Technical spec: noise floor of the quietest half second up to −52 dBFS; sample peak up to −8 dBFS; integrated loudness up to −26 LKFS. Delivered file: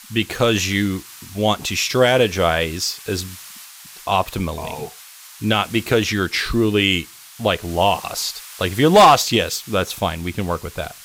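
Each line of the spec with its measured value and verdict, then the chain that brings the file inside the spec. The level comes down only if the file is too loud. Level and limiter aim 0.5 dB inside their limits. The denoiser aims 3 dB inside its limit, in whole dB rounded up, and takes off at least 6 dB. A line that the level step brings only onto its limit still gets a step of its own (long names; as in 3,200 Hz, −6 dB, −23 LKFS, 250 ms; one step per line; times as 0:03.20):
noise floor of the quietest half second −42 dBFS: out of spec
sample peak −4.0 dBFS: out of spec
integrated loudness −19.0 LKFS: out of spec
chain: broadband denoise 6 dB, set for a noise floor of −42 dBFS
level −7.5 dB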